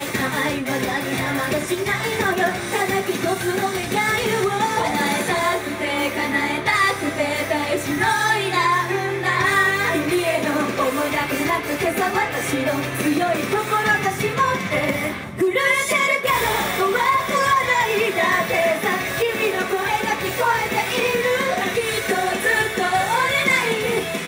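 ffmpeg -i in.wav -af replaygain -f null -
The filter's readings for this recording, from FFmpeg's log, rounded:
track_gain = +1.8 dB
track_peak = 0.296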